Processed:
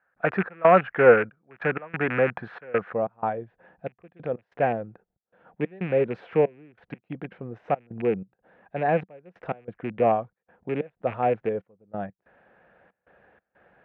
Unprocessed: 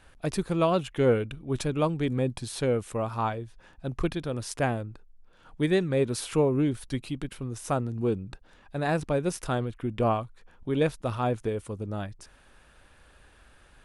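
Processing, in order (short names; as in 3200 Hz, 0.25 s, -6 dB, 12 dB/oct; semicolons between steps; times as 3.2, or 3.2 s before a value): rattling part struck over -32 dBFS, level -22 dBFS; bell 1400 Hz +15 dB 1.2 oct, from 2.93 s -2.5 dB; step gate ".xx.xxxx..x.xxxx" 93 bpm -24 dB; speaker cabinet 160–2100 Hz, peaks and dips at 190 Hz +6 dB, 270 Hz -4 dB, 500 Hz +7 dB, 720 Hz +8 dB, 1100 Hz -3 dB, 1700 Hz +4 dB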